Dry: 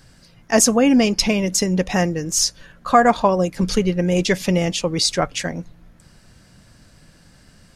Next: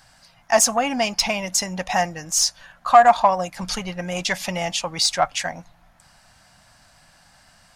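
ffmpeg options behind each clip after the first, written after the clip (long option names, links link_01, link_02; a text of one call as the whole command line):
ffmpeg -i in.wav -af "acontrast=37,lowshelf=frequency=560:width_type=q:width=3:gain=-9.5,volume=-5.5dB" out.wav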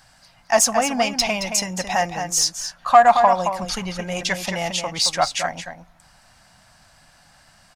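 ffmpeg -i in.wav -filter_complex "[0:a]asplit=2[link_01][link_02];[link_02]adelay=221.6,volume=-7dB,highshelf=frequency=4000:gain=-4.99[link_03];[link_01][link_03]amix=inputs=2:normalize=0" out.wav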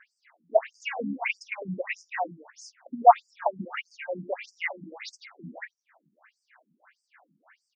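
ffmpeg -i in.wav -af "adynamicsmooth=sensitivity=1:basefreq=6200,highshelf=frequency=2900:width_type=q:width=3:gain=-10.5,afftfilt=real='re*between(b*sr/1024,230*pow(6700/230,0.5+0.5*sin(2*PI*1.6*pts/sr))/1.41,230*pow(6700/230,0.5+0.5*sin(2*PI*1.6*pts/sr))*1.41)':imag='im*between(b*sr/1024,230*pow(6700/230,0.5+0.5*sin(2*PI*1.6*pts/sr))/1.41,230*pow(6700/230,0.5+0.5*sin(2*PI*1.6*pts/sr))*1.41)':win_size=1024:overlap=0.75" out.wav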